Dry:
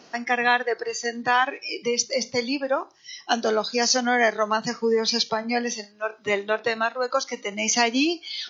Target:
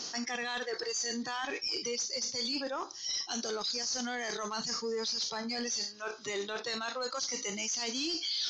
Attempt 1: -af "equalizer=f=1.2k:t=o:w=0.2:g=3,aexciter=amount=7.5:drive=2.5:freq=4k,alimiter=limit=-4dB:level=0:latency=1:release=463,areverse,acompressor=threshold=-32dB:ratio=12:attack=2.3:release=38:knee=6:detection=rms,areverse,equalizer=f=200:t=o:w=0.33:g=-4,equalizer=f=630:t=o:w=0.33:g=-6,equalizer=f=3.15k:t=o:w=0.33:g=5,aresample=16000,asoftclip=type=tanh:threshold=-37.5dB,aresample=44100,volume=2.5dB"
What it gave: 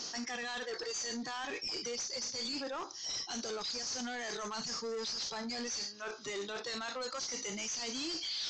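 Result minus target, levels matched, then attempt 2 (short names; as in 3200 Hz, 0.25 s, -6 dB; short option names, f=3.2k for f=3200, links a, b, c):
soft clip: distortion +10 dB
-af "equalizer=f=1.2k:t=o:w=0.2:g=3,aexciter=amount=7.5:drive=2.5:freq=4k,alimiter=limit=-4dB:level=0:latency=1:release=463,areverse,acompressor=threshold=-32dB:ratio=12:attack=2.3:release=38:knee=6:detection=rms,areverse,equalizer=f=200:t=o:w=0.33:g=-4,equalizer=f=630:t=o:w=0.33:g=-6,equalizer=f=3.15k:t=o:w=0.33:g=5,aresample=16000,asoftclip=type=tanh:threshold=-28.5dB,aresample=44100,volume=2.5dB"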